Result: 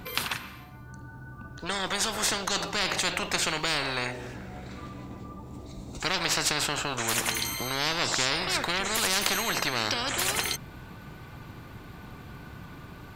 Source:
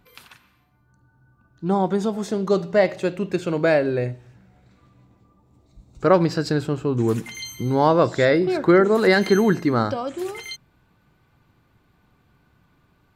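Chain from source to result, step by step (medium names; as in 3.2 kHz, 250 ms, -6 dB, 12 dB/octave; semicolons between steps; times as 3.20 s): single-diode clipper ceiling -5 dBFS; spectrum-flattening compressor 10:1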